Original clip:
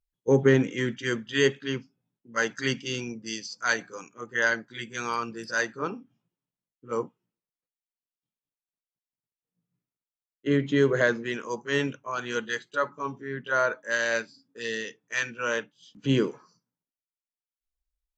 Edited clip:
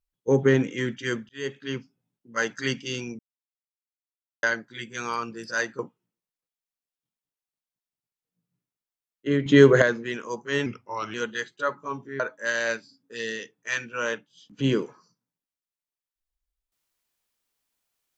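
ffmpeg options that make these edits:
-filter_complex "[0:a]asplit=10[a][b][c][d][e][f][g][h][i][j];[a]atrim=end=1.29,asetpts=PTS-STARTPTS,afade=t=out:st=1.286:d=0.004:c=hsin[k];[b]atrim=start=1.29:end=3.19,asetpts=PTS-STARTPTS,afade=t=in:d=0.48,afade=t=out:st=1.896:d=0.004:c=hsin[l];[c]atrim=start=3.19:end=4.43,asetpts=PTS-STARTPTS,volume=0[m];[d]atrim=start=4.43:end=5.792,asetpts=PTS-STARTPTS,afade=t=in:d=0.004:c=hsin[n];[e]atrim=start=6.988:end=10.662[o];[f]atrim=start=10.658:end=11.022,asetpts=PTS-STARTPTS,volume=8dB[p];[g]atrim=start=11.018:end=11.864[q];[h]atrim=start=11.86:end=12.28,asetpts=PTS-STARTPTS,asetrate=38808,aresample=44100[r];[i]atrim=start=12.276:end=13.342[s];[j]atrim=start=13.648[t];[k][l][m][n]concat=n=4:v=0:a=1[u];[u][o]acrossfade=d=0.004:c1=hsin:c2=hsin[v];[v][p]acrossfade=d=0.004:c1=hsin:c2=hsin[w];[w][q]acrossfade=d=0.004:c1=hsin:c2=hsin[x];[x][r]acrossfade=d=0.004:c1=hsin:c2=hsin[y];[y][s]acrossfade=d=0.004:c1=hsin:c2=hsin[z];[z][t]acrossfade=d=0.004:c1=hsin:c2=hsin"

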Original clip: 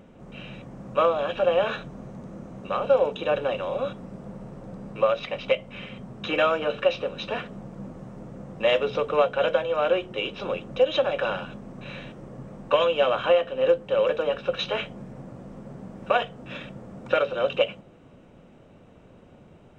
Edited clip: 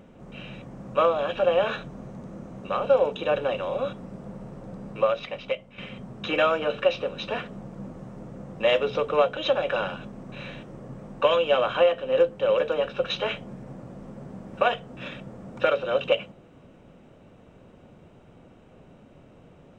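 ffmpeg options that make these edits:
-filter_complex "[0:a]asplit=3[a][b][c];[a]atrim=end=5.78,asetpts=PTS-STARTPTS,afade=t=out:st=4.94:d=0.84:silence=0.316228[d];[b]atrim=start=5.78:end=9.372,asetpts=PTS-STARTPTS,afade=t=in:d=0.004:c=hsin:silence=0.316228[e];[c]atrim=start=10.858[f];[d][e]concat=n=2:v=0:a=1[g];[g][f]acrossfade=d=0.004:c1=hsin:c2=hsin"

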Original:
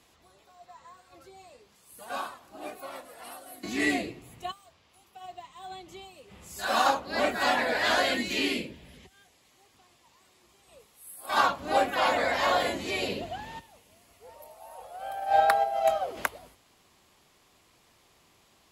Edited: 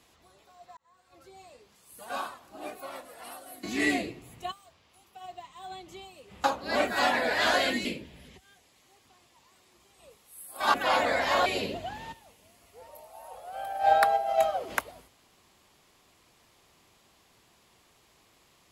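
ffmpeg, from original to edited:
-filter_complex "[0:a]asplit=6[a][b][c][d][e][f];[a]atrim=end=0.77,asetpts=PTS-STARTPTS,afade=t=out:st=0.766:d=0.004:c=hsin[g];[b]atrim=start=0.77:end=6.442,asetpts=PTS-STARTPTS,afade=t=in:d=0.6[h];[c]atrim=start=6.878:end=8.292[i];[d]atrim=start=8.538:end=11.432[j];[e]atrim=start=11.858:end=12.582[k];[f]atrim=start=12.928[l];[g][h]concat=n=2:v=0:a=1[m];[m][i]acrossfade=d=0.004:c1=hsin:c2=hsin[n];[n][j]acrossfade=d=0.004:c1=hsin:c2=hsin[o];[o][k]acrossfade=d=0.004:c1=hsin:c2=hsin[p];[p][l]acrossfade=d=0.004:c1=hsin:c2=hsin"

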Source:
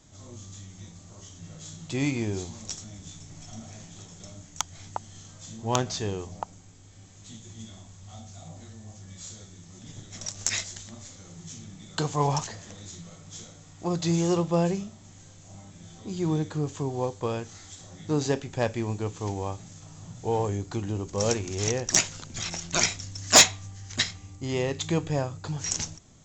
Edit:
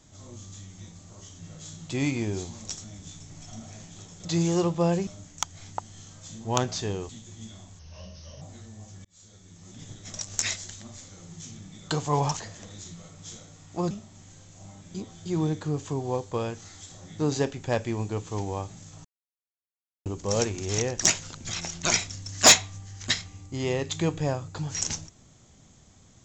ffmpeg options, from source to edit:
-filter_complex "[0:a]asplit=12[a][b][c][d][e][f][g][h][i][j][k][l];[a]atrim=end=4.252[m];[b]atrim=start=13.978:end=14.802[n];[c]atrim=start=4.248:end=6.272[o];[d]atrim=start=7.268:end=7.974[p];[e]atrim=start=7.97:end=8.49,asetpts=PTS-STARTPTS,asetrate=36603,aresample=44100[q];[f]atrim=start=8.486:end=9.12,asetpts=PTS-STARTPTS,afade=t=out:st=0.63:d=0.004:c=hsin[r];[g]atrim=start=9.12:end=13.982,asetpts=PTS-STARTPTS,afade=t=in:d=0.64[s];[h]atrim=start=14.798:end=15.842[t];[i]atrim=start=15.838:end=16.152,asetpts=PTS-STARTPTS,areverse[u];[j]atrim=start=16.148:end=19.94,asetpts=PTS-STARTPTS,afade=t=out:st=3.788:d=0.004:c=hsin[v];[k]atrim=start=19.94:end=20.95,asetpts=PTS-STARTPTS,volume=0[w];[l]atrim=start=20.95,asetpts=PTS-STARTPTS,afade=t=in:d=0.004:c=hsin[x];[m][n]acrossfade=d=0.004:c1=hsin:c2=hsin[y];[y][o]acrossfade=d=0.004:c1=hsin:c2=hsin[z];[z][p]acrossfade=d=0.004:c1=hsin:c2=hsin[aa];[aa][q]acrossfade=d=0.004:c1=hsin:c2=hsin[ab];[r][s]concat=n=2:v=0:a=1[ac];[ab][ac]acrossfade=d=0.004:c1=hsin:c2=hsin[ad];[ad][t]acrossfade=d=0.004:c1=hsin:c2=hsin[ae];[ae][u]acrossfade=d=0.004:c1=hsin:c2=hsin[af];[v][w][x]concat=n=3:v=0:a=1[ag];[af][ag]acrossfade=d=0.004:c1=hsin:c2=hsin"

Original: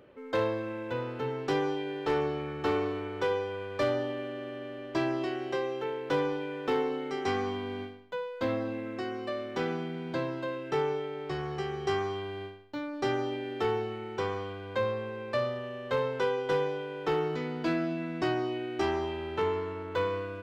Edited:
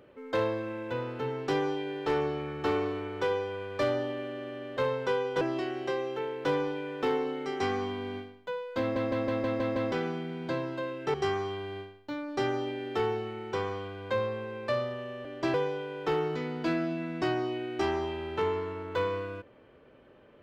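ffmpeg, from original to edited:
-filter_complex "[0:a]asplit=13[a][b][c][d][e][f][g][h][i][j][k][l][m];[a]atrim=end=4.772[n];[b]atrim=start=15.898:end=16.542[o];[c]atrim=start=5.058:end=8.612[p];[d]atrim=start=8.448:end=8.612[q];[e]atrim=start=8.448:end=8.612[r];[f]atrim=start=8.448:end=8.612[s];[g]atrim=start=8.448:end=8.612[t];[h]atrim=start=8.448:end=8.612[u];[i]atrim=start=8.448:end=8.612[v];[j]atrim=start=9.568:end=10.792[w];[k]atrim=start=11.788:end=15.902[x];[l]atrim=start=4.768:end=5.062[y];[m]atrim=start=16.538[z];[n][o]acrossfade=d=0.004:c1=hsin:c2=hsin[aa];[aa][p]acrossfade=d=0.004:c1=hsin:c2=hsin[ab];[ab][q]acrossfade=d=0.004:c1=hsin:c2=hsin[ac];[ac][r]acrossfade=d=0.004:c1=hsin:c2=hsin[ad];[ad][s]acrossfade=d=0.004:c1=hsin:c2=hsin[ae];[ae][t]acrossfade=d=0.004:c1=hsin:c2=hsin[af];[af][u]acrossfade=d=0.004:c1=hsin:c2=hsin[ag];[ag][v]acrossfade=d=0.004:c1=hsin:c2=hsin[ah];[ah][w]acrossfade=d=0.004:c1=hsin:c2=hsin[ai];[ai][x]acrossfade=d=0.004:c1=hsin:c2=hsin[aj];[aj][y]acrossfade=d=0.004:c1=hsin:c2=hsin[ak];[ak][z]acrossfade=d=0.004:c1=hsin:c2=hsin"

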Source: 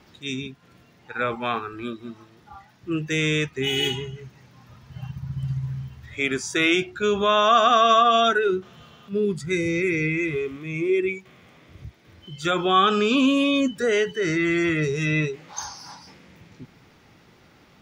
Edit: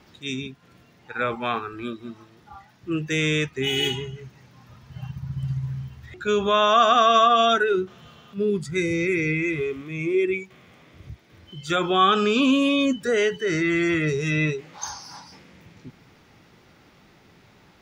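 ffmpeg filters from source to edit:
-filter_complex "[0:a]asplit=2[a][b];[a]atrim=end=6.142[c];[b]atrim=start=6.888[d];[c][d]acrossfade=d=0.004:c1=hsin:c2=hsin"

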